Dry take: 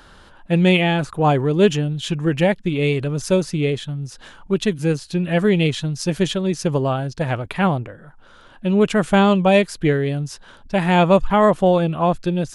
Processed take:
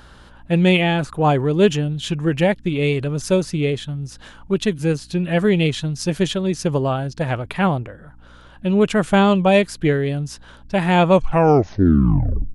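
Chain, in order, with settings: tape stop on the ending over 1.45 s; hum 60 Hz, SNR 30 dB

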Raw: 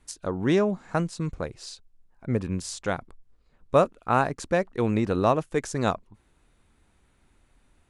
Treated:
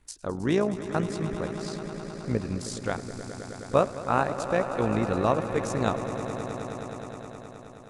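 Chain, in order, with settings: AM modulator 57 Hz, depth 40%; echo with a slow build-up 105 ms, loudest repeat 5, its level -14 dB

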